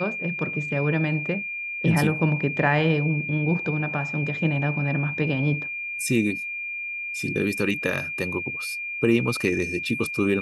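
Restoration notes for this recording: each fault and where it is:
whine 2.4 kHz -29 dBFS

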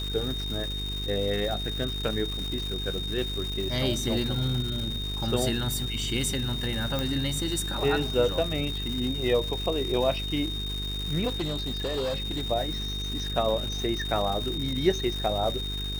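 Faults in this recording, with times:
buzz 50 Hz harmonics 9 -34 dBFS
crackle 490 per s -32 dBFS
whine 3.7 kHz -33 dBFS
6.99 s: pop
11.27–12.46 s: clipped -25.5 dBFS

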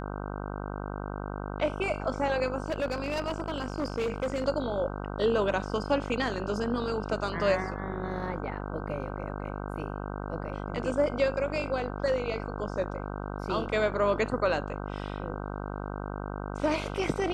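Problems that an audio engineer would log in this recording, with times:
buzz 50 Hz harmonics 31 -36 dBFS
2.66–4.45 s: clipped -25.5 dBFS

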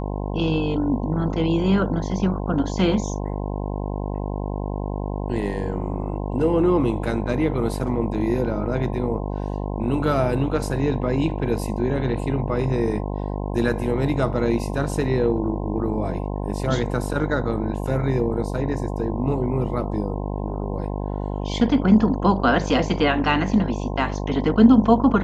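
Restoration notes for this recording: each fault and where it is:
buzz 50 Hz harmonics 21 -27 dBFS

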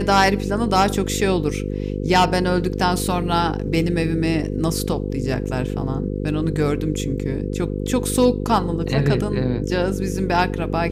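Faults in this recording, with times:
buzz 50 Hz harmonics 10 -25 dBFS

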